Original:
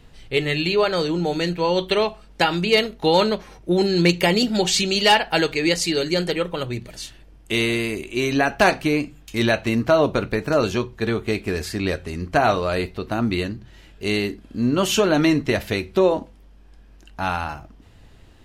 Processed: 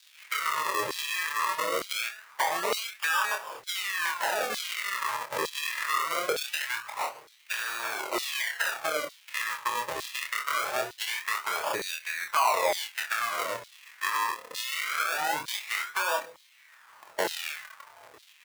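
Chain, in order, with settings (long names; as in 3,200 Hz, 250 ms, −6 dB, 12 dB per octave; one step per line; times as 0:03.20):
spectral magnitudes quantised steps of 15 dB
brickwall limiter −15.5 dBFS, peak gain reduction 10 dB
sample-and-hold swept by an LFO 41×, swing 100% 0.23 Hz
high-shelf EQ 4,500 Hz +7.5 dB
notch filter 740 Hz, Q 12
double-tracking delay 26 ms −5 dB
downward compressor, threshold −28 dBFS, peak gain reduction 11.5 dB
octave-band graphic EQ 125/250/1,000/2,000 Hz +10/−8/+6/+6 dB
auto-filter high-pass saw down 1.1 Hz 430–4,100 Hz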